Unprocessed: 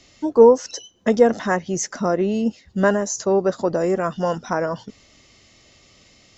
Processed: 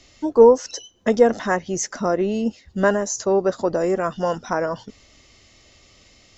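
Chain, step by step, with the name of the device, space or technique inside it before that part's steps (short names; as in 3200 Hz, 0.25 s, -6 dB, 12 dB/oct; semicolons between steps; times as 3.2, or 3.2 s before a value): low shelf boost with a cut just above (low shelf 78 Hz +7 dB; bell 160 Hz -4.5 dB 1.1 oct)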